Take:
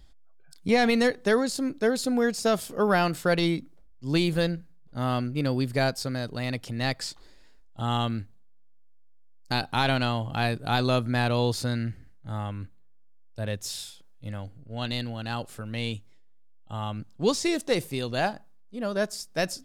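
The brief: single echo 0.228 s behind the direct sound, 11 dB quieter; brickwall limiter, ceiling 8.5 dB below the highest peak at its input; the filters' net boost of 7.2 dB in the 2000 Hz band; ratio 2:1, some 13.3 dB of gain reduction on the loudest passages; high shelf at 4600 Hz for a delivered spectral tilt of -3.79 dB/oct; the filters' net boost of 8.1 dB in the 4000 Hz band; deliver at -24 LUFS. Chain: bell 2000 Hz +7 dB; bell 4000 Hz +3.5 dB; high shelf 4600 Hz +8.5 dB; compressor 2:1, threshold -41 dBFS; limiter -26 dBFS; echo 0.228 s -11 dB; gain +14 dB

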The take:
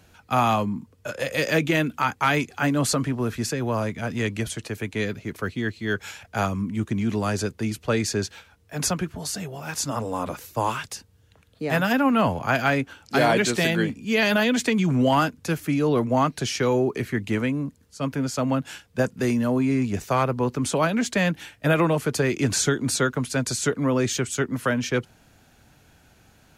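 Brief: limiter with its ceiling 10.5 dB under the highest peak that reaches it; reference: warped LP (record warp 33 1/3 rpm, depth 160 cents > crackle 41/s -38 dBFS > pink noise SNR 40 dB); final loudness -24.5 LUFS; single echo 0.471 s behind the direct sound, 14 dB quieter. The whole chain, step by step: limiter -20 dBFS; echo 0.471 s -14 dB; record warp 33 1/3 rpm, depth 160 cents; crackle 41/s -38 dBFS; pink noise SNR 40 dB; gain +5 dB

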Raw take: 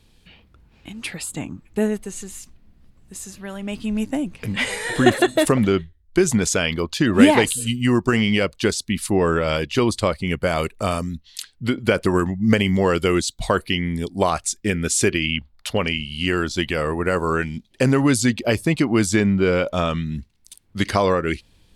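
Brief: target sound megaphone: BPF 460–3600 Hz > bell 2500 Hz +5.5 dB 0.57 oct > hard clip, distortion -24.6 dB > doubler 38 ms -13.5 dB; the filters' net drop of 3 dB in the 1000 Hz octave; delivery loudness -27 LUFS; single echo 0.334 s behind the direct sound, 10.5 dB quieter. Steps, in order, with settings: BPF 460–3600 Hz; bell 1000 Hz -4 dB; bell 2500 Hz +5.5 dB 0.57 oct; echo 0.334 s -10.5 dB; hard clip -9.5 dBFS; doubler 38 ms -13.5 dB; gain -3 dB

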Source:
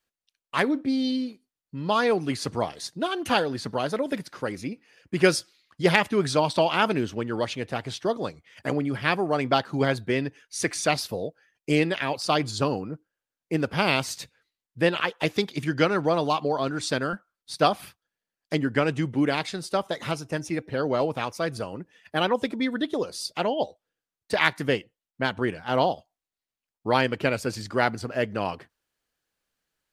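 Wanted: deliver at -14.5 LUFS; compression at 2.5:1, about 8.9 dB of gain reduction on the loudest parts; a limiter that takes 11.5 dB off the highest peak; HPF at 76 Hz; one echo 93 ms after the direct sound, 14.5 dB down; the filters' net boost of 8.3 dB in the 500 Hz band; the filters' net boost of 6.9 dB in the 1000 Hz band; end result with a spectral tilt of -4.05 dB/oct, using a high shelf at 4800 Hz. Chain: HPF 76 Hz; bell 500 Hz +8.5 dB; bell 1000 Hz +5.5 dB; high shelf 4800 Hz +8.5 dB; compressor 2.5:1, threshold -22 dBFS; limiter -17 dBFS; echo 93 ms -14.5 dB; gain +14.5 dB

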